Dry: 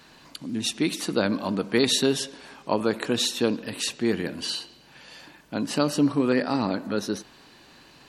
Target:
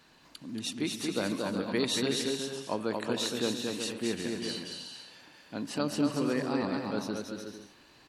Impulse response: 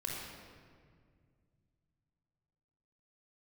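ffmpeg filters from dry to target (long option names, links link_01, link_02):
-af "aecho=1:1:230|368|450.8|500.5|530.3:0.631|0.398|0.251|0.158|0.1,volume=-8.5dB"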